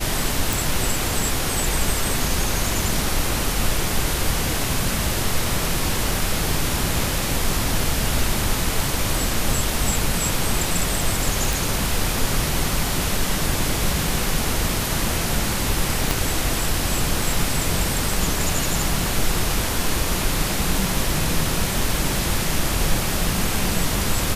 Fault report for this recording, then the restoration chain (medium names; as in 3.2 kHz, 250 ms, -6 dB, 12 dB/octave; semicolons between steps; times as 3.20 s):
0.53 s: pop
11.53 s: pop
16.11 s: pop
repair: de-click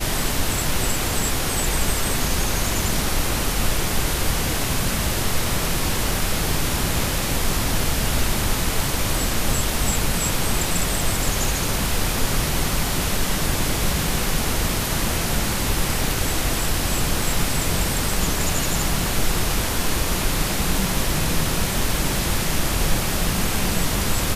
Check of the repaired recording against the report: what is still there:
16.11 s: pop